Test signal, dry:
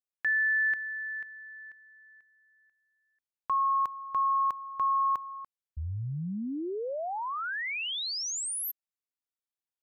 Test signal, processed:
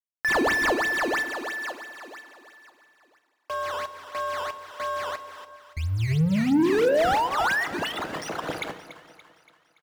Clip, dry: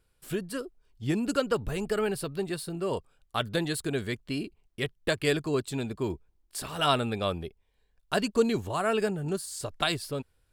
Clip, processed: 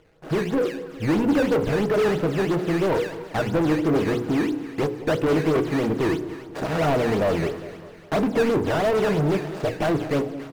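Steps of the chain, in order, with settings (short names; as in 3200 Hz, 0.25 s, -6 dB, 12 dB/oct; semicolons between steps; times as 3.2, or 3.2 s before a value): median filter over 41 samples; high shelf 2100 Hz -8 dB; notches 60/120/180/240/300/360/420/480/540 Hz; comb 6.3 ms, depth 30%; in parallel at -2.5 dB: compressor, threshold -39 dBFS; on the sum: decimation with a swept rate 12×, swing 160% 3 Hz; overdrive pedal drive 31 dB, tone 1900 Hz, clips at -13 dBFS; split-band echo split 910 Hz, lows 0.202 s, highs 0.286 s, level -14 dB; FDN reverb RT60 1.1 s, low-frequency decay 1.2×, high-frequency decay 0.75×, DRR 13.5 dB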